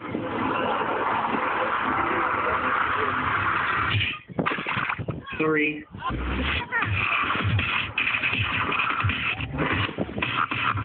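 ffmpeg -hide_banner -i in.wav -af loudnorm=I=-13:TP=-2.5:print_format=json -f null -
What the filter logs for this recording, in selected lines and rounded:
"input_i" : "-24.5",
"input_tp" : "-10.0",
"input_lra" : "1.3",
"input_thresh" : "-34.5",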